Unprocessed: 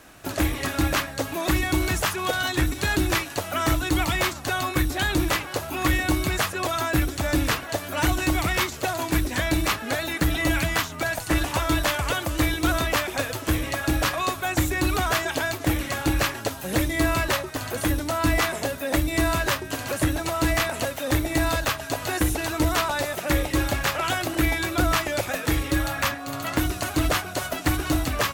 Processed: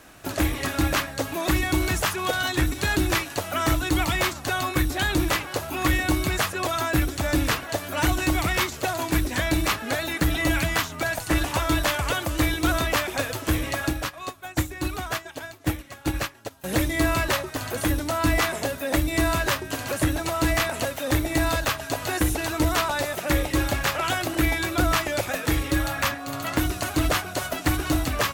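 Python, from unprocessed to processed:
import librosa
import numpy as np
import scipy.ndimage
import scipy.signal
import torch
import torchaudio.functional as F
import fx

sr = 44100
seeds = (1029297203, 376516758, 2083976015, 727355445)

y = fx.upward_expand(x, sr, threshold_db=-30.0, expansion=2.5, at=(13.89, 16.64))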